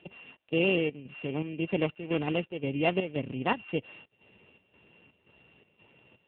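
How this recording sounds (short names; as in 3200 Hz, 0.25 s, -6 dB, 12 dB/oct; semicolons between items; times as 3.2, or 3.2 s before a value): a buzz of ramps at a fixed pitch in blocks of 16 samples; chopped level 1.9 Hz, depth 65%, duty 70%; AMR-NB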